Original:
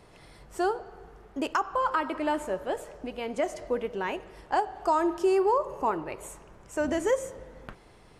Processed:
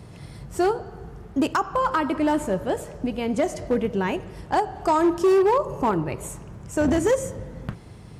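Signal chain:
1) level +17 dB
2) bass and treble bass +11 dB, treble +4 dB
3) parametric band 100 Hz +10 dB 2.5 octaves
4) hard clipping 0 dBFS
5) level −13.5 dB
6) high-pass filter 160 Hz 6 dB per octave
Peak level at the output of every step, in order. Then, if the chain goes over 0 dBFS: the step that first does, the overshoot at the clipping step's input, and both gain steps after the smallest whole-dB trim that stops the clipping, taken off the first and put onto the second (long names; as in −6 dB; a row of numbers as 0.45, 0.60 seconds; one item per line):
+3.5, +4.0, +6.0, 0.0, −13.5, −10.5 dBFS
step 1, 6.0 dB
step 1 +11 dB, step 5 −7.5 dB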